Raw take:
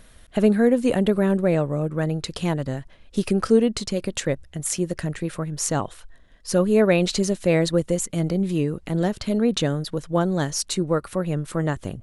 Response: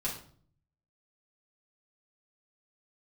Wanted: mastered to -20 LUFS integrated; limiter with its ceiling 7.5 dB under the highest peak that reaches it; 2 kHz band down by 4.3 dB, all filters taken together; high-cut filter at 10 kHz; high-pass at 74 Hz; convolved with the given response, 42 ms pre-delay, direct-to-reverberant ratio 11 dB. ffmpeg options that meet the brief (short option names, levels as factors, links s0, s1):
-filter_complex "[0:a]highpass=74,lowpass=10000,equalizer=f=2000:t=o:g=-5.5,alimiter=limit=0.188:level=0:latency=1,asplit=2[s0][s1];[1:a]atrim=start_sample=2205,adelay=42[s2];[s1][s2]afir=irnorm=-1:irlink=0,volume=0.178[s3];[s0][s3]amix=inputs=2:normalize=0,volume=1.78"